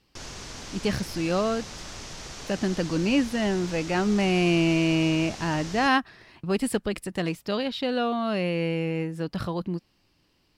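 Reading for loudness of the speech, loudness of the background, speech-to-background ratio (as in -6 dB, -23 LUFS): -26.0 LUFS, -39.0 LUFS, 13.0 dB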